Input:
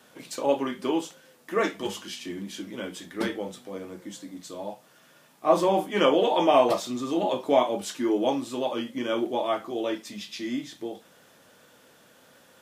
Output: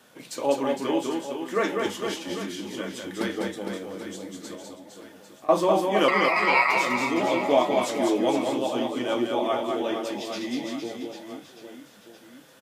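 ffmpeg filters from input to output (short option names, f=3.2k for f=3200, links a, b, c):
-filter_complex "[0:a]asettb=1/sr,asplit=3[a][b][c];[a]atrim=end=4.554[d];[b]atrim=start=4.55:end=5.49,asetpts=PTS-STARTPTS,afade=t=in:d=0.004:c=qsin,afade=t=out:st=0.936:d=0.004:c=qsin,acompressor=threshold=-45dB:ratio=6[e];[c]atrim=start=5.486[f];[d][e]acrossfade=d=0.004:c1=hsin:c2=qsin[g];[g][f]acrossfade=d=0.004:c1=qsin:c2=hsin,asettb=1/sr,asplit=3[h][i][j];[h]atrim=end=6.084[k];[i]atrim=start=6.08:end=6.77,asetpts=PTS-STARTPTS,afade=t=in:d=0.004:c=qsin,afade=t=out:st=0.686:d=0.004:c=qsin,aeval=exprs='val(0)*sin(2*PI*1600*n/s)':c=same[l];[j]atrim=start=6.766[m];[k][l]acrossfade=d=0.004:c1=hsin:c2=qsin[n];[n][m]acrossfade=d=0.004:c1=qsin:c2=hsin,aecho=1:1:200|460|798|1237|1809:0.631|0.398|0.251|0.158|0.1"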